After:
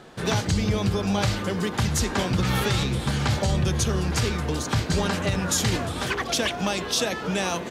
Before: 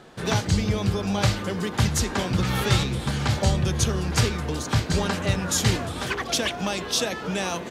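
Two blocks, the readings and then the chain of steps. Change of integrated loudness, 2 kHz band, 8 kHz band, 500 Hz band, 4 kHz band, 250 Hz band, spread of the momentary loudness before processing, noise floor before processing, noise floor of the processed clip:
0.0 dB, +0.5 dB, −0.5 dB, +0.5 dB, −0.5 dB, +0.5 dB, 5 LU, −34 dBFS, −33 dBFS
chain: brickwall limiter −15 dBFS, peak gain reduction 8 dB
level +1.5 dB

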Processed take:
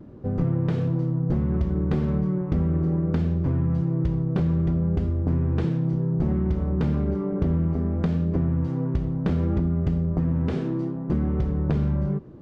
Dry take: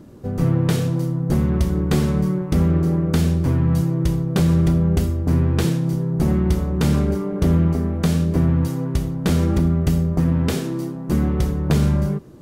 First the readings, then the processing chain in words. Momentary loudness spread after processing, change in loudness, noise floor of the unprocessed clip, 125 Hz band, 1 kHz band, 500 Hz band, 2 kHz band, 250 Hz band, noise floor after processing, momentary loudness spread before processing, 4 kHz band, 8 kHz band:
3 LU, −5.0 dB, −30 dBFS, −4.5 dB, −7.0 dB, −5.0 dB, −10.5 dB, −5.0 dB, −31 dBFS, 4 LU, below −15 dB, below −25 dB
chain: downward compressor, threshold −19 dBFS, peak gain reduction 6.5 dB
pitch vibrato 0.64 Hz 23 cents
head-to-tape spacing loss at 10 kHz 34 dB

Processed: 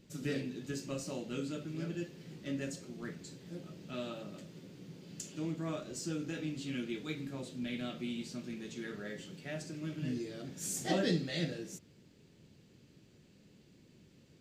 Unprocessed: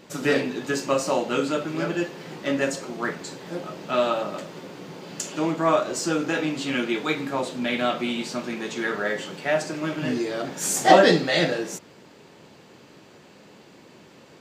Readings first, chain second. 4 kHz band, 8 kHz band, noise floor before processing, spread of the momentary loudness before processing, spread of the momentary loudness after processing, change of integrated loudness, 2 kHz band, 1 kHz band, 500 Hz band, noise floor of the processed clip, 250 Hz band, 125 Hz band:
−14.5 dB, −13.0 dB, −51 dBFS, 13 LU, 11 LU, −15.5 dB, −19.0 dB, −24.5 dB, −18.5 dB, −63 dBFS, −11.5 dB, −6.5 dB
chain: guitar amp tone stack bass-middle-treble 10-0-1
level +7.5 dB

